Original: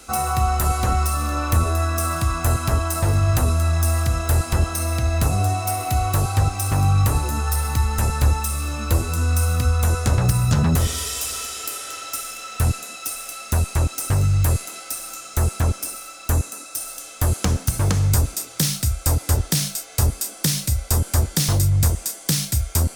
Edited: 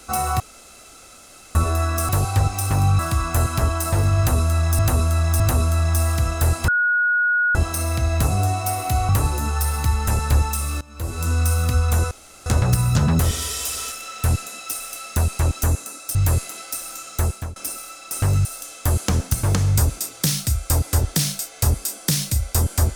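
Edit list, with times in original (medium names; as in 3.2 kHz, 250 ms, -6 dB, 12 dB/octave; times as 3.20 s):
0.40–1.55 s: room tone
3.28–3.89 s: loop, 3 plays
4.56 s: add tone 1.45 kHz -15.5 dBFS 0.87 s
6.10–7.00 s: move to 2.09 s
8.72–9.15 s: fade in quadratic, from -19 dB
10.02 s: insert room tone 0.35 s
11.48–12.28 s: delete
13.99–14.33 s: swap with 16.29–16.81 s
15.36–15.74 s: fade out linear, to -23.5 dB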